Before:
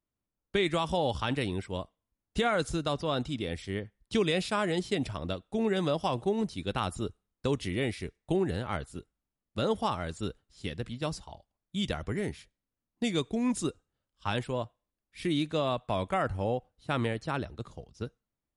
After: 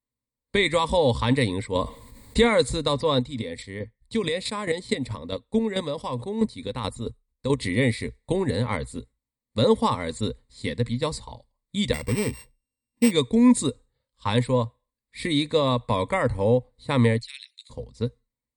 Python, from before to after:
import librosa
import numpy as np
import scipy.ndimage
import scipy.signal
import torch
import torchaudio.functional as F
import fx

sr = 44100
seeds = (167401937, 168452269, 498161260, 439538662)

y = fx.env_flatten(x, sr, amount_pct=50, at=(1.75, 2.58))
y = fx.chopper(y, sr, hz=4.6, depth_pct=60, duty_pct=20, at=(3.15, 7.59))
y = fx.sample_sort(y, sr, block=16, at=(11.93, 13.1), fade=0.02)
y = fx.steep_highpass(y, sr, hz=2400.0, slope=36, at=(17.18, 17.69), fade=0.02)
y = fx.ripple_eq(y, sr, per_octave=0.98, db=13)
y = fx.noise_reduce_blind(y, sr, reduce_db=10)
y = fx.peak_eq(y, sr, hz=1200.0, db=-2.5, octaves=1.5)
y = y * librosa.db_to_amplitude(6.5)